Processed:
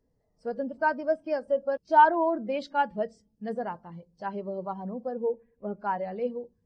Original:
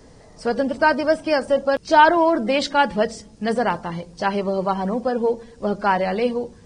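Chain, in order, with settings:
0:05.25–0:05.80: high shelf with overshoot 3,200 Hz −10 dB, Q 3
every bin expanded away from the loudest bin 1.5 to 1
level −5.5 dB

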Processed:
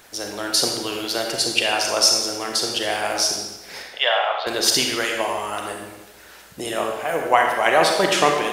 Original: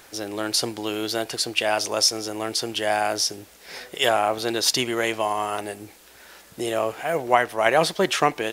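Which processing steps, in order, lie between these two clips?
0:03.82–0:04.47: Chebyshev band-pass filter 580–3,800 Hz, order 3
harmonic and percussive parts rebalanced harmonic −9 dB
convolution reverb RT60 1.1 s, pre-delay 33 ms, DRR 1.5 dB
level +3 dB

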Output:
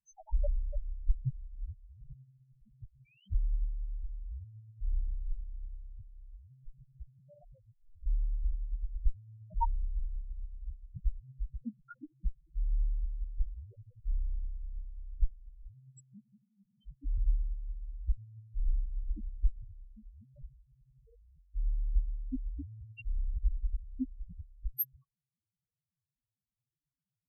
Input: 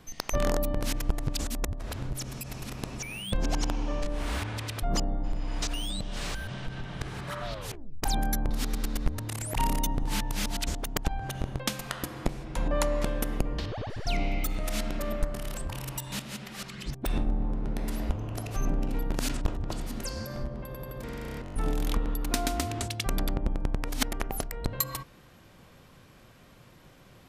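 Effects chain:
harmonic generator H 7 −17 dB, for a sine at −11.5 dBFS
spectral peaks only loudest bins 1
level +9.5 dB

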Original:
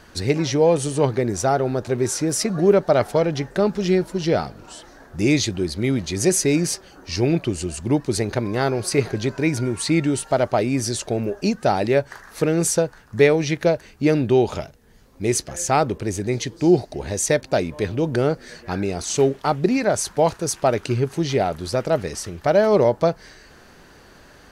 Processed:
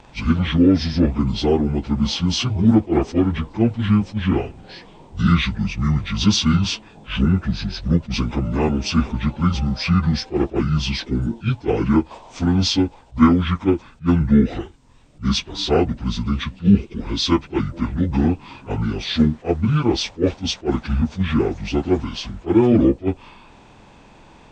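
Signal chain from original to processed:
phase-vocoder pitch shift without resampling −10 semitones
level that may rise only so fast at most 340 dB per second
level +3 dB

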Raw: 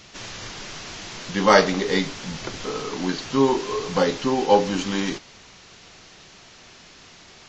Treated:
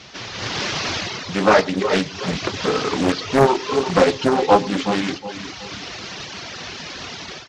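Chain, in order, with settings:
variable-slope delta modulation 32 kbit/s
in parallel at −2 dB: downward compressor, threshold −36 dBFS, peak gain reduction 22.5 dB
on the sum: high-pass filter 54 Hz 24 dB per octave
automatic gain control gain up to 12 dB
repeating echo 368 ms, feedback 38%, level −10 dB
reverb reduction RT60 1 s
on a send: single-tap delay 113 ms −23.5 dB
on the sum: highs frequency-modulated by the lows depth 0.71 ms

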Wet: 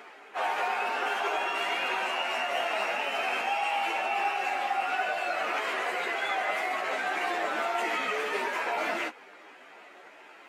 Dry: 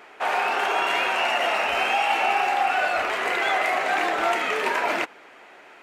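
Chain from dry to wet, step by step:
high-pass filter 160 Hz 24 dB per octave
brickwall limiter −18.5 dBFS, peak gain reduction 7.5 dB
time stretch by phase vocoder 1.8×

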